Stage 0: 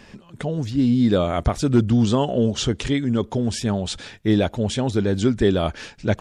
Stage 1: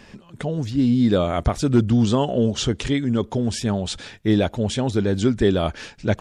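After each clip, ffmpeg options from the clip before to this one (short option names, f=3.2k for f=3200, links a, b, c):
-af anull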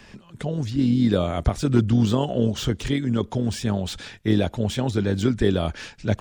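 -filter_complex "[0:a]acrossover=split=210|850|2800[a][b][c][d];[b]tremolo=f=43:d=0.75[e];[c]alimiter=level_in=2.5dB:limit=-24dB:level=0:latency=1:release=81,volume=-2.5dB[f];[d]asoftclip=type=tanh:threshold=-31dB[g];[a][e][f][g]amix=inputs=4:normalize=0"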